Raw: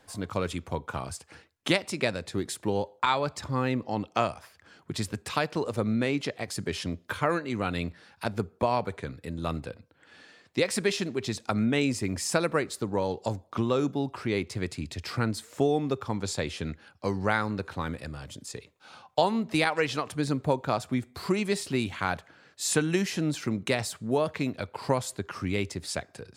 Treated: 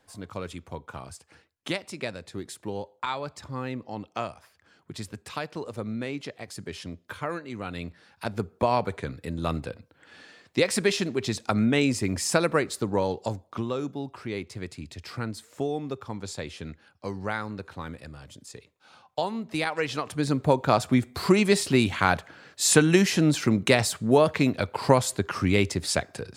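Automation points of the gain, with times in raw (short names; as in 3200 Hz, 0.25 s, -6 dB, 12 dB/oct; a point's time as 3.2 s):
7.64 s -5.5 dB
8.75 s +3 dB
13 s +3 dB
13.78 s -4.5 dB
19.44 s -4.5 dB
20.8 s +7 dB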